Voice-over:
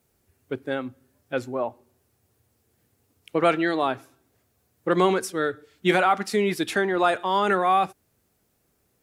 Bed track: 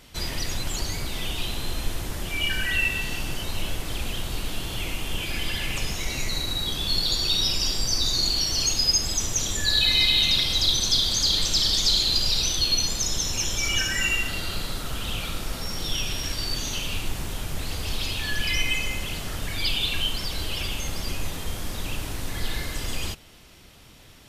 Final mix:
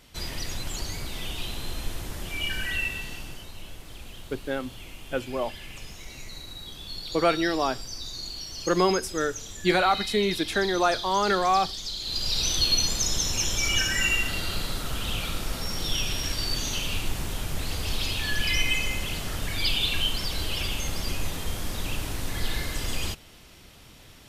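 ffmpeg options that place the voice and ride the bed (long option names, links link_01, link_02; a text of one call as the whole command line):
ffmpeg -i stem1.wav -i stem2.wav -filter_complex "[0:a]adelay=3800,volume=-2dB[link_01];[1:a]volume=9dB,afade=type=out:start_time=2.67:duration=0.85:silence=0.354813,afade=type=in:start_time=11.99:duration=0.58:silence=0.223872[link_02];[link_01][link_02]amix=inputs=2:normalize=0" out.wav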